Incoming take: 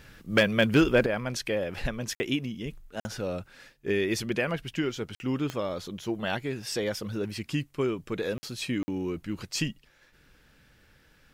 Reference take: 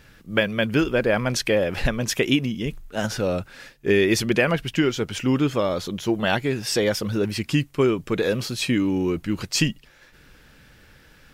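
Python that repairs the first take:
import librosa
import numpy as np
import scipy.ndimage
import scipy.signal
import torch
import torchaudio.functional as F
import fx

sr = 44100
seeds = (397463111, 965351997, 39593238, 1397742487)

y = fx.fix_declip(x, sr, threshold_db=-13.0)
y = fx.fix_declick_ar(y, sr, threshold=10.0)
y = fx.fix_interpolate(y, sr, at_s=(2.15, 3.0, 5.15, 8.38, 8.83), length_ms=50.0)
y = fx.gain(y, sr, db=fx.steps((0.0, 0.0), (1.06, 8.5)))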